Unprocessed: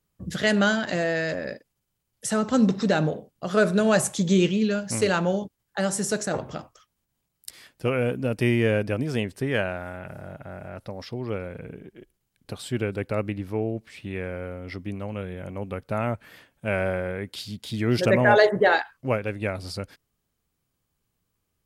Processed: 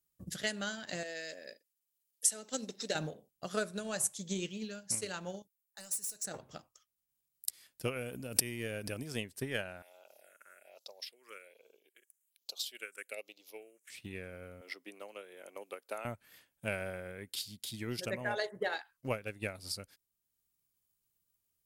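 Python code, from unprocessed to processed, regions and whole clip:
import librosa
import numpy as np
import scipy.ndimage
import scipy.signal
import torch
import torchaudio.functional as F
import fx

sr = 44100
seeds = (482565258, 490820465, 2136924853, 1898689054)

y = fx.chain(x, sr, fx.highpass(hz=370.0, slope=12),
    fx.peak_eq(hz=1100.0, db=-11.5, octaves=0.88), at=(1.03, 2.95))
y = fx.chain(y, sr, fx.pre_emphasis(coefficient=0.8),
    fx.overload_stage(gain_db=32.5),
    fx.notch(hz=3300.0, q=7.8), at=(5.42, 6.25))
y = fx.chain(y, sr, fx.high_shelf(hz=5700.0, db=5.0),
    fx.pre_swell(db_per_s=24.0), at=(7.96, 9.08))
y = fx.chain(y, sr, fx.peak_eq(hz=7000.0, db=13.5, octaves=1.1),
    fx.phaser_stages(stages=4, low_hz=700.0, high_hz=1800.0, hz=1.2, feedback_pct=20),
    fx.highpass(hz=500.0, slope=24), at=(9.82, 13.9))
y = fx.chain(y, sr, fx.highpass(hz=350.0, slope=24),
    fx.band_squash(depth_pct=40), at=(14.61, 16.05))
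y = F.preemphasis(torch.from_numpy(y), 0.8).numpy()
y = fx.rider(y, sr, range_db=3, speed_s=0.5)
y = fx.transient(y, sr, attack_db=7, sustain_db=-4)
y = y * librosa.db_to_amplitude(-4.5)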